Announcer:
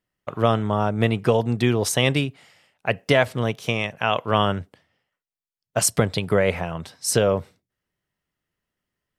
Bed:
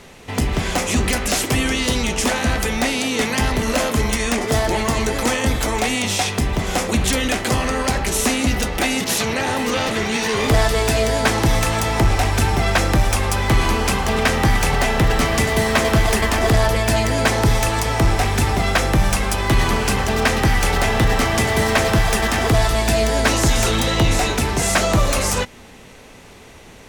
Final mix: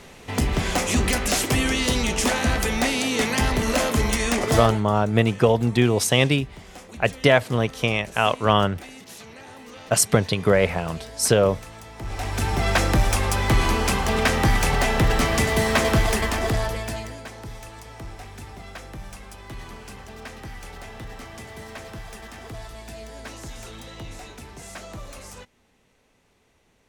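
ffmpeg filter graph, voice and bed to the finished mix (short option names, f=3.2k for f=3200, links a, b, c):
-filter_complex "[0:a]adelay=4150,volume=1.5dB[a];[1:a]volume=16.5dB,afade=t=out:st=4.55:d=0.26:silence=0.105925,afade=t=in:st=11.98:d=0.76:silence=0.112202,afade=t=out:st=15.89:d=1.34:silence=0.11885[b];[a][b]amix=inputs=2:normalize=0"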